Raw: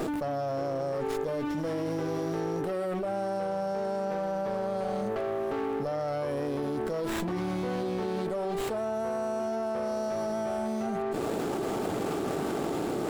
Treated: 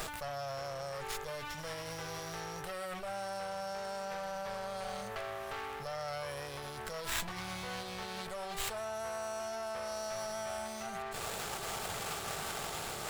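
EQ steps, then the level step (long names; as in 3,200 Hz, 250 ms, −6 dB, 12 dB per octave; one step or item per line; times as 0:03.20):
guitar amp tone stack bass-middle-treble 10-0-10
+5.5 dB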